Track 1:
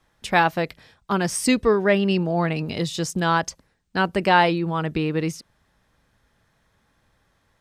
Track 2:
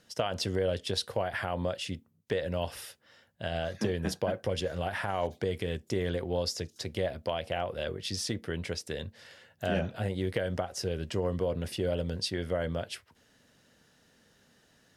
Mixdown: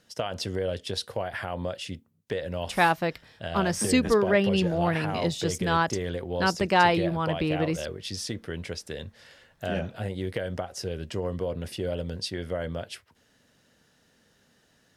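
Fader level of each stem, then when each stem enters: −3.5, 0.0 decibels; 2.45, 0.00 seconds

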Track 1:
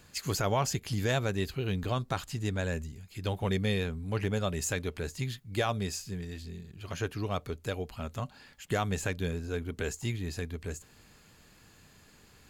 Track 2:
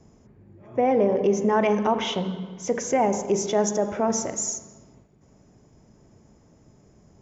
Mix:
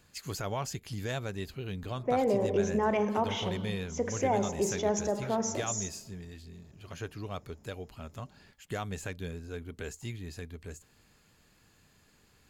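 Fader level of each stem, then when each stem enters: −6.0, −7.0 decibels; 0.00, 1.30 seconds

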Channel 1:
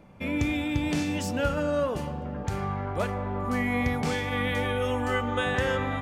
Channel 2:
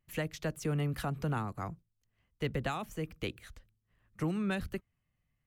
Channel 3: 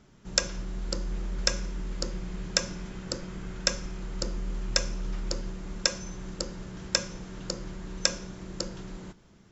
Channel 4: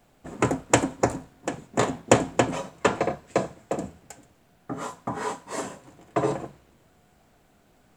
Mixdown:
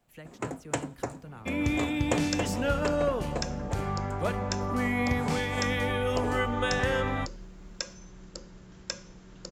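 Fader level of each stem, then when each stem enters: −1.0, −12.0, −9.5, −11.5 decibels; 1.25, 0.00, 1.95, 0.00 seconds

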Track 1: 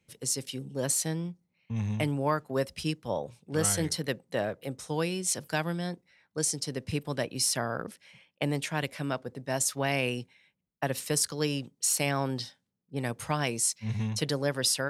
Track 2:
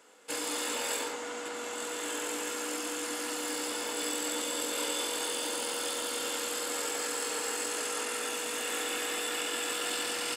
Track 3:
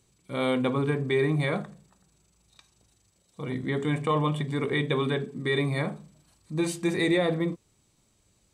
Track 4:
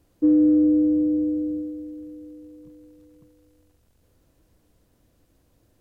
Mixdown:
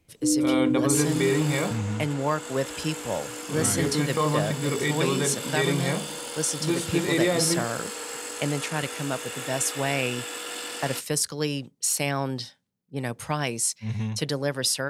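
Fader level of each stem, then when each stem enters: +2.0, −1.5, +0.5, −7.0 decibels; 0.00, 0.65, 0.10, 0.00 seconds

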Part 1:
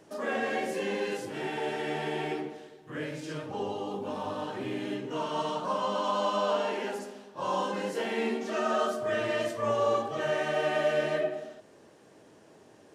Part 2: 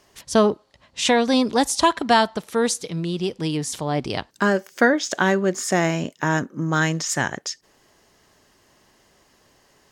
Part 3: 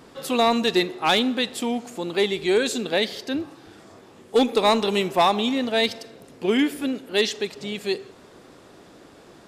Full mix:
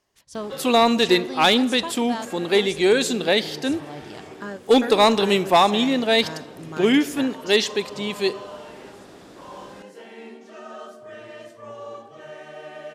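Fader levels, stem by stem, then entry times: −10.5, −15.0, +3.0 decibels; 2.00, 0.00, 0.35 seconds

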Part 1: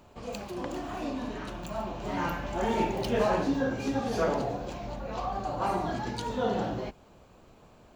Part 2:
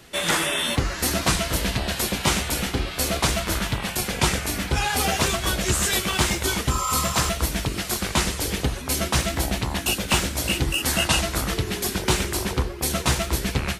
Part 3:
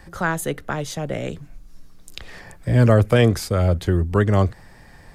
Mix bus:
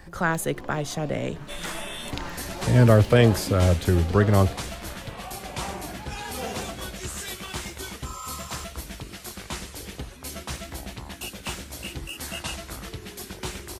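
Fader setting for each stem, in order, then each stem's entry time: −7.0, −12.0, −1.5 decibels; 0.00, 1.35, 0.00 seconds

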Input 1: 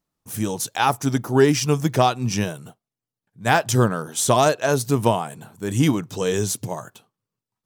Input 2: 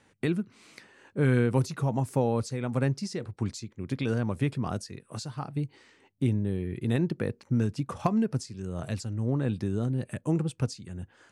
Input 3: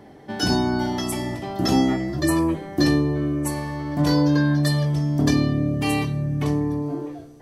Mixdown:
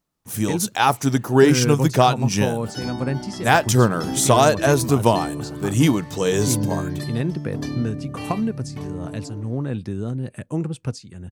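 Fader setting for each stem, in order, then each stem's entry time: +2.0, +2.0, −9.5 decibels; 0.00, 0.25, 2.35 seconds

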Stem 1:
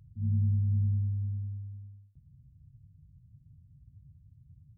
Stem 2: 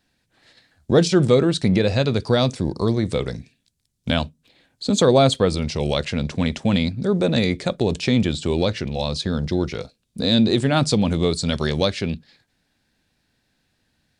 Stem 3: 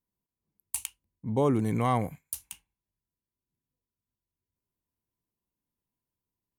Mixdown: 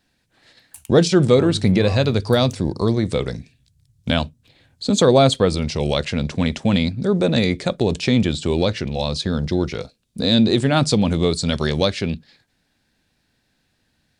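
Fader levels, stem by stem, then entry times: −4.0, +1.5, −9.0 decibels; 1.15, 0.00, 0.00 seconds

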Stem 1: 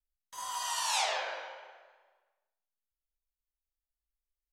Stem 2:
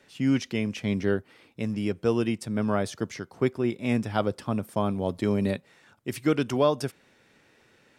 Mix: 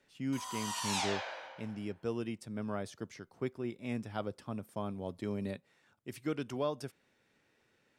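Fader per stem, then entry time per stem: −4.5, −12.0 decibels; 0.00, 0.00 seconds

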